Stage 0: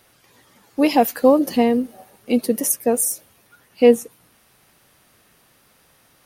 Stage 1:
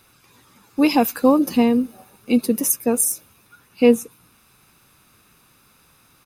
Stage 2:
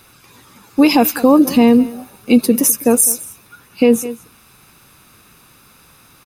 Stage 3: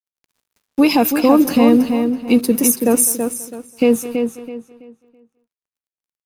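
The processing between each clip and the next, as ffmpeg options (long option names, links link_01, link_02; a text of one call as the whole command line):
ffmpeg -i in.wav -af "aecho=1:1:0.8:0.48" out.wav
ffmpeg -i in.wav -af "aecho=1:1:205:0.0891,alimiter=level_in=9dB:limit=-1dB:release=50:level=0:latency=1,volume=-1dB" out.wav
ffmpeg -i in.wav -filter_complex "[0:a]aeval=exprs='sgn(val(0))*max(abs(val(0))-0.0133,0)':channel_layout=same,asplit=2[link_01][link_02];[link_02]adelay=329,lowpass=frequency=4400:poles=1,volume=-6dB,asplit=2[link_03][link_04];[link_04]adelay=329,lowpass=frequency=4400:poles=1,volume=0.29,asplit=2[link_05][link_06];[link_06]adelay=329,lowpass=frequency=4400:poles=1,volume=0.29,asplit=2[link_07][link_08];[link_08]adelay=329,lowpass=frequency=4400:poles=1,volume=0.29[link_09];[link_03][link_05][link_07][link_09]amix=inputs=4:normalize=0[link_10];[link_01][link_10]amix=inputs=2:normalize=0,volume=-2dB" out.wav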